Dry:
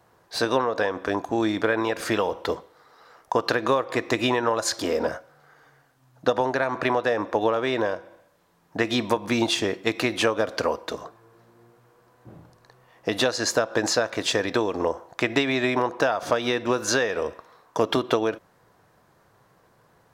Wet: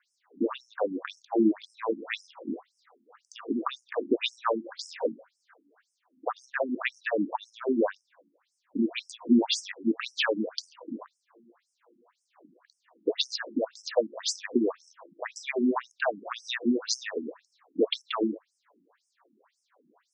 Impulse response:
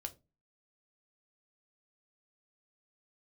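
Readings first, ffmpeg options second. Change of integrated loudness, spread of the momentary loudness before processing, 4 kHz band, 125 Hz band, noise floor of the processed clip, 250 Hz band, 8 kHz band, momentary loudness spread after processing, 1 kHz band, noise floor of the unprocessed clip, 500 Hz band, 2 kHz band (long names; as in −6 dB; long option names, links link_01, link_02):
−5.5 dB, 7 LU, −5.0 dB, below −10 dB, −79 dBFS, −1.5 dB, −8.0 dB, 12 LU, −9.5 dB, −61 dBFS, −7.5 dB, −8.5 dB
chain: -af "lowshelf=frequency=160:width_type=q:width=3:gain=-10.5,afftfilt=real='re*between(b*sr/1024,240*pow(7200/240,0.5+0.5*sin(2*PI*1.9*pts/sr))/1.41,240*pow(7200/240,0.5+0.5*sin(2*PI*1.9*pts/sr))*1.41)':imag='im*between(b*sr/1024,240*pow(7200/240,0.5+0.5*sin(2*PI*1.9*pts/sr))/1.41,240*pow(7200/240,0.5+0.5*sin(2*PI*1.9*pts/sr))*1.41)':win_size=1024:overlap=0.75"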